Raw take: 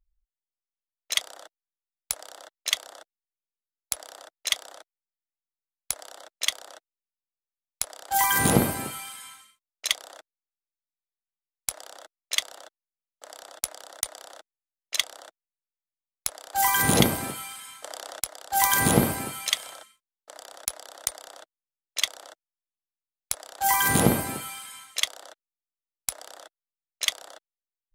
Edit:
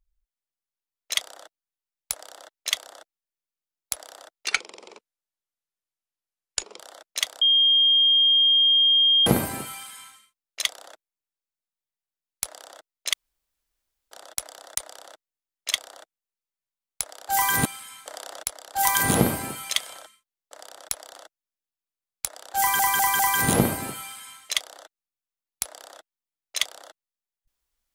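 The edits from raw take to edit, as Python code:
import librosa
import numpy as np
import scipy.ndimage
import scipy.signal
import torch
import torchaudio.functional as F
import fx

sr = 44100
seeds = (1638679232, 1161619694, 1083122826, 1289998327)

y = fx.edit(x, sr, fx.speed_span(start_s=4.47, length_s=1.58, speed=0.68),
    fx.bleep(start_s=6.67, length_s=1.85, hz=3220.0, db=-15.0),
    fx.room_tone_fill(start_s=12.39, length_s=0.98),
    fx.cut(start_s=16.91, length_s=0.51),
    fx.cut(start_s=20.92, length_s=1.3),
    fx.stutter(start_s=23.66, slice_s=0.2, count=4), tone=tone)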